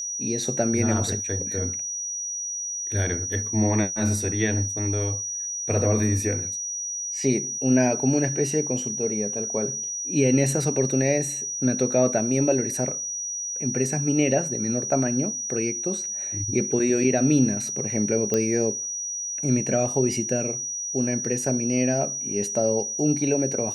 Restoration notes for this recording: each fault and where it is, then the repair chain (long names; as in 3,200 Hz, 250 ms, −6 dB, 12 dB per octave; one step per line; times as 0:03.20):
whistle 5,800 Hz −28 dBFS
0:18.34: click −10 dBFS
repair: click removal
notch filter 5,800 Hz, Q 30